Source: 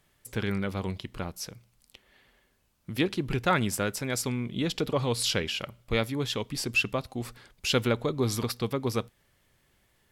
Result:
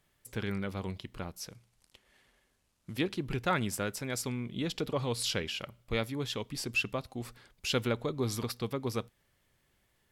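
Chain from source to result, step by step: 1.5–2.97 CVSD 64 kbps; gain -5 dB

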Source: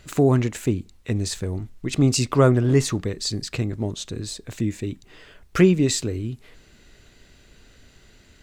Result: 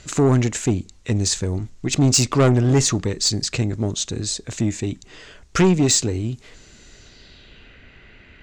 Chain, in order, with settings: one diode to ground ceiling -14.5 dBFS; low-pass sweep 6900 Hz -> 2400 Hz, 6.92–7.77; in parallel at -7.5 dB: sine folder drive 8 dB, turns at -4.5 dBFS; on the sum: gain -4 dB

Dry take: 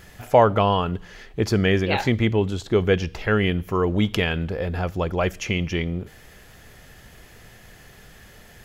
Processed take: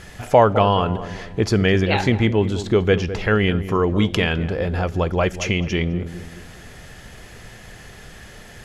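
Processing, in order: LPF 11000 Hz 24 dB/oct; in parallel at -1.5 dB: compressor, threshold -31 dBFS, peak gain reduction 19.5 dB; on the sum: darkening echo 0.208 s, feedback 47%, low-pass 1100 Hz, level -11.5 dB; gain +1 dB

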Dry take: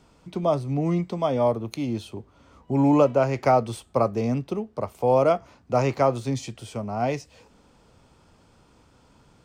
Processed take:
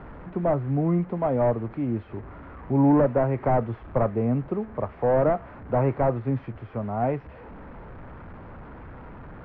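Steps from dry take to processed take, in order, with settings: delta modulation 32 kbps, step -36.5 dBFS; LPF 1800 Hz 24 dB/oct; low shelf 70 Hz +7.5 dB

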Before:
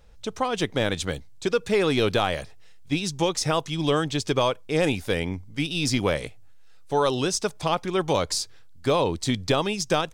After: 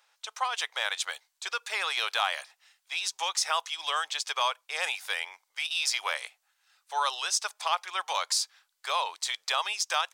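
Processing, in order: inverse Chebyshev high-pass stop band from 250 Hz, stop band 60 dB

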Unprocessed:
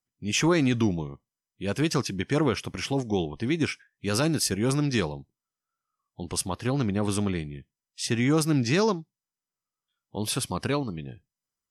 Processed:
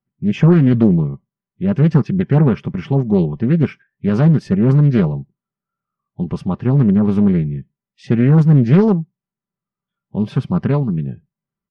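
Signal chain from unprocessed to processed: LPF 1900 Hz 12 dB/oct; bell 140 Hz +14.5 dB 2 oct; comb 5.1 ms, depth 49%; Doppler distortion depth 0.43 ms; gain +2 dB

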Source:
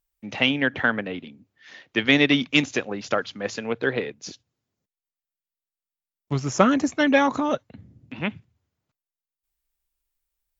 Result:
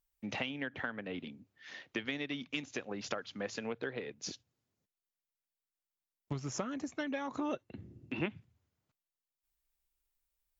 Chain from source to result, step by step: compressor 12:1, threshold -31 dBFS, peak gain reduction 20.5 dB; 7.39–8.26 small resonant body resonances 360/2700 Hz, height 12 dB; gain -3.5 dB

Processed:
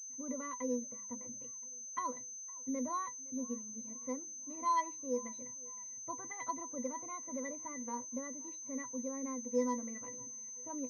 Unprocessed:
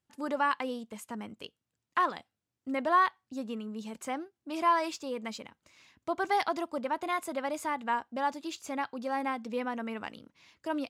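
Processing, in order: octave resonator B, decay 0.11 s; de-hum 104.8 Hz, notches 3; on a send: thinning echo 0.512 s, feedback 51%, high-pass 210 Hz, level -23 dB; on the sum: pulse-width modulation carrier 6200 Hz; gain +2.5 dB

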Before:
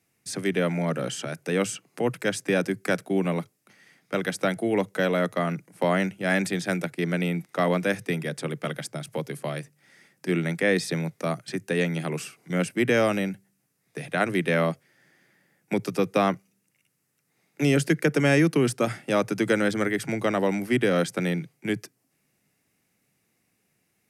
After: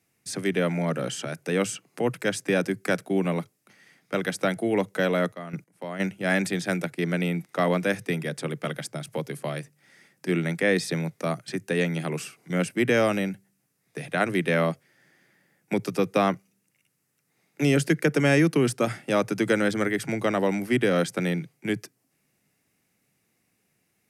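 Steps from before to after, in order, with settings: 5.11–5.99 step gate "...xx..x." 141 bpm -12 dB

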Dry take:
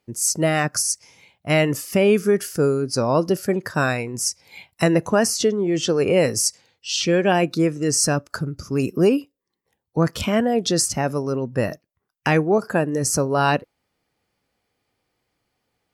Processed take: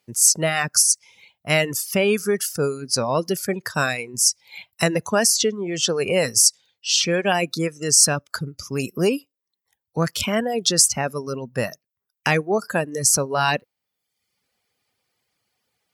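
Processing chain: HPF 79 Hz; bell 310 Hz -5.5 dB 0.4 oct; reverb removal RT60 0.77 s; high shelf 2100 Hz +9 dB; gain -2 dB

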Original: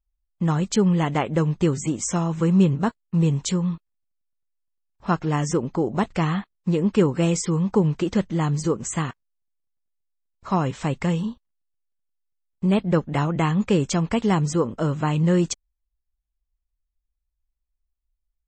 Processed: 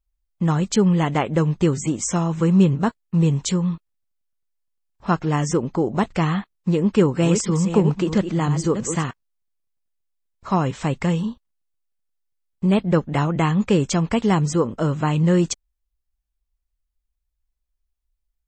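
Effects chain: 6.85–9.04 reverse delay 0.326 s, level -8.5 dB; gain +2 dB

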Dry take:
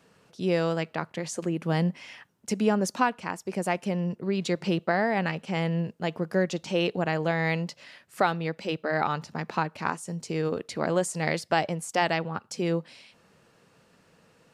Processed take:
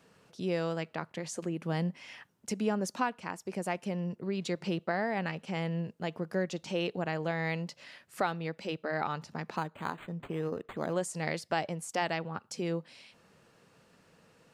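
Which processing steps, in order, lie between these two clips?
in parallel at 0 dB: compressor, threshold -38 dBFS, peak gain reduction 18.5 dB; 9.56–10.93 on the sum: decimation joined by straight lines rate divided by 8×; gain -8 dB

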